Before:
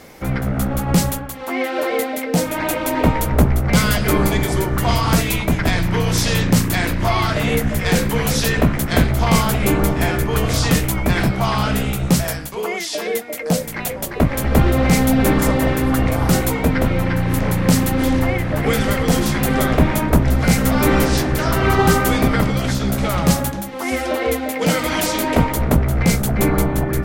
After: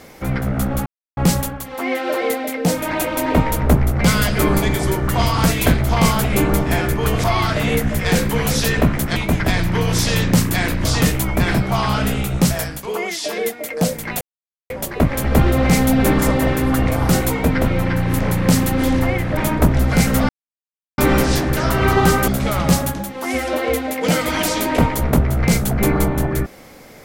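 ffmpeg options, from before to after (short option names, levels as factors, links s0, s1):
-filter_complex "[0:a]asplit=10[s0][s1][s2][s3][s4][s5][s6][s7][s8][s9];[s0]atrim=end=0.86,asetpts=PTS-STARTPTS,afade=t=out:st=0.856:d=0.004:c=hsin,apad=pad_dur=0.31[s10];[s1]atrim=start=0.86:end=5.352,asetpts=PTS-STARTPTS,afade=t=in:d=0.004:c=hsin[s11];[s2]atrim=start=8.958:end=10.542[s12];[s3]atrim=start=7.038:end=8.962[s13];[s4]atrim=start=5.348:end=7.042[s14];[s5]atrim=start=10.538:end=13.9,asetpts=PTS-STARTPTS,afade=t=out:st=3.358:d=0.004:c=hsin,apad=pad_dur=0.49[s15];[s6]atrim=start=13.9:end=18.572,asetpts=PTS-STARTPTS,afade=t=in:d=0.004:c=hsin[s16];[s7]atrim=start=19.878:end=20.8,asetpts=PTS-STARTPTS,afade=t=out:st=0.918:d=0.004:c=hsin,apad=pad_dur=0.69[s17];[s8]atrim=start=20.8:end=22.102,asetpts=PTS-STARTPTS,afade=t=in:d=0.004:c=hsin[s18];[s9]atrim=start=22.858[s19];[s10][s11]concat=n=2:v=0:a=1[s20];[s20][s12]acrossfade=d=0.004:c1=hsin:c2=hsin[s21];[s21][s13]acrossfade=d=0.004:c1=hsin:c2=hsin[s22];[s22][s14]acrossfade=d=0.004:c1=hsin:c2=hsin[s23];[s15][s16]concat=n=2:v=0:a=1[s24];[s23][s24]acrossfade=d=0.004:c1=hsin:c2=hsin[s25];[s17][s18]concat=n=2:v=0:a=1[s26];[s25][s26]acrossfade=d=0.004:c1=hsin:c2=hsin[s27];[s27][s19]acrossfade=d=0.004:c1=hsin:c2=hsin"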